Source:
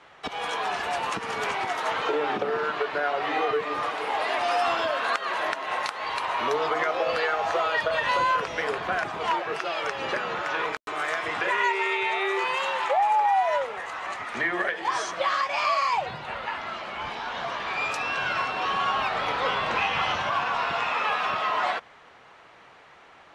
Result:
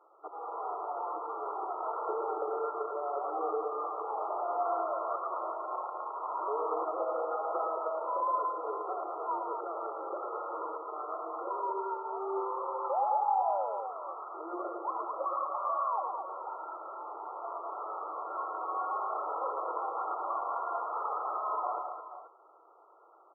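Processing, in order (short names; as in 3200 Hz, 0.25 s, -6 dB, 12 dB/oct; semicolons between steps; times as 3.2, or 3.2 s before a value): FFT band-pass 310–1400 Hz; on a send: tapped delay 0.113/0.216/0.484 s -5.5/-6/-11.5 dB; on the sum: gain -8.5 dB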